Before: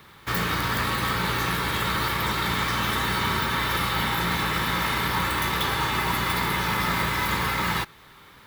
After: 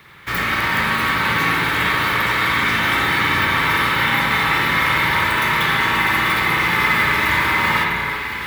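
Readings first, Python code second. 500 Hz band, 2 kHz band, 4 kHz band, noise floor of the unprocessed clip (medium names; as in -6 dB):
+4.5 dB, +11.0 dB, +5.5 dB, -50 dBFS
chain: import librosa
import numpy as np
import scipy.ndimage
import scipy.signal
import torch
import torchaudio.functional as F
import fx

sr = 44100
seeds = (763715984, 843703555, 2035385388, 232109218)

y = fx.peak_eq(x, sr, hz=2100.0, db=8.0, octaves=0.89)
y = fx.echo_alternate(y, sr, ms=325, hz=2200.0, feedback_pct=75, wet_db=-6.5)
y = fx.rev_spring(y, sr, rt60_s=1.5, pass_ms=(53,), chirp_ms=40, drr_db=-1.5)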